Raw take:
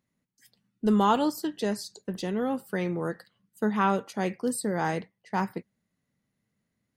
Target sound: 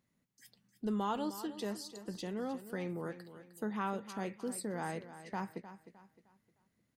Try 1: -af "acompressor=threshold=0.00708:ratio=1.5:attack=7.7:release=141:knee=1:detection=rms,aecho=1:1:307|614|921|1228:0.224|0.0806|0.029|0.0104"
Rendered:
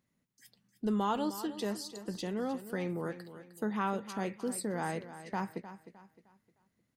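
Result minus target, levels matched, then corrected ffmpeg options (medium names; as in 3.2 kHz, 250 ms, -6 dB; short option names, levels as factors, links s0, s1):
compression: peak gain reduction -3.5 dB
-af "acompressor=threshold=0.002:ratio=1.5:attack=7.7:release=141:knee=1:detection=rms,aecho=1:1:307|614|921|1228:0.224|0.0806|0.029|0.0104"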